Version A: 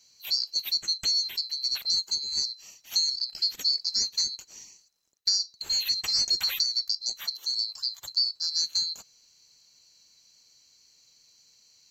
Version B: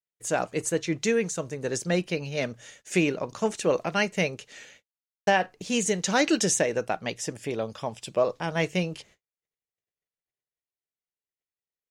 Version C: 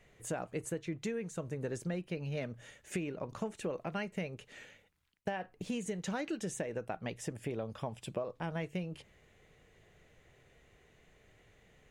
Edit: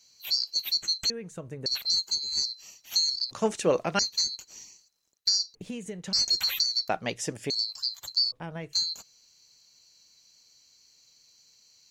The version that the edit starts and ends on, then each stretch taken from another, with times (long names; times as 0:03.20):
A
0:01.10–0:01.66: punch in from C
0:03.31–0:03.99: punch in from B
0:05.55–0:06.13: punch in from C
0:06.89–0:07.50: punch in from B
0:08.32–0:08.73: punch in from C